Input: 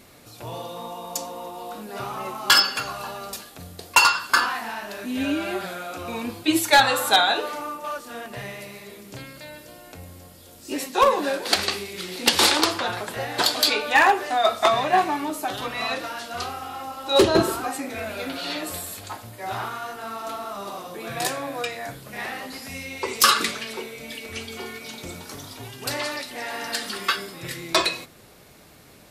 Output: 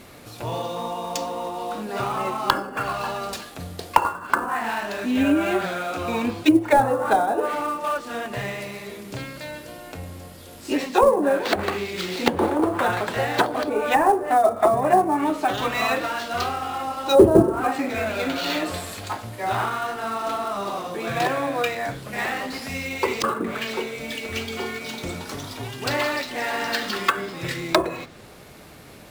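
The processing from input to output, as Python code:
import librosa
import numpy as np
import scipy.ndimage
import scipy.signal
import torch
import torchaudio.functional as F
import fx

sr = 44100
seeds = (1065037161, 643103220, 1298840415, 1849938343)

p1 = fx.env_lowpass_down(x, sr, base_hz=620.0, full_db=-17.0)
p2 = fx.sample_hold(p1, sr, seeds[0], rate_hz=9800.0, jitter_pct=20)
p3 = p1 + F.gain(torch.from_numpy(p2), -6.0).numpy()
y = F.gain(torch.from_numpy(p3), 2.5).numpy()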